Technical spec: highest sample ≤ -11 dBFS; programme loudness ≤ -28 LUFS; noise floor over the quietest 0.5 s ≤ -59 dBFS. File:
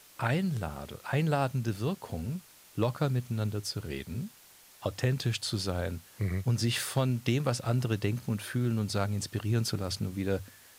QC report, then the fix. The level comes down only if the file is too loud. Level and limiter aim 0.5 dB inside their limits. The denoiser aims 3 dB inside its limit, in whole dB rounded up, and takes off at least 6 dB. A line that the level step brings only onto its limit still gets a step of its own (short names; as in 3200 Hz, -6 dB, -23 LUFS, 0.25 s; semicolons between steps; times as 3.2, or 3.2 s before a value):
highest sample -15.0 dBFS: OK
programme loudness -32.0 LUFS: OK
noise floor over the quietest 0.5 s -57 dBFS: fail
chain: denoiser 6 dB, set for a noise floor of -57 dBFS